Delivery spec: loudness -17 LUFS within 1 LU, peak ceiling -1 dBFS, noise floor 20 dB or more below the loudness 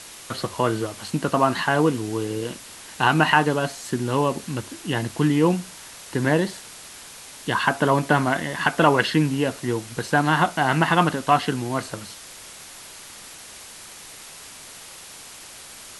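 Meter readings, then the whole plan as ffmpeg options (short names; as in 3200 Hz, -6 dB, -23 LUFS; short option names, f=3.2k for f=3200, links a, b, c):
noise floor -42 dBFS; noise floor target -43 dBFS; loudness -22.5 LUFS; peak -2.5 dBFS; loudness target -17.0 LUFS
-> -af "afftdn=nr=6:nf=-42"
-af "volume=5.5dB,alimiter=limit=-1dB:level=0:latency=1"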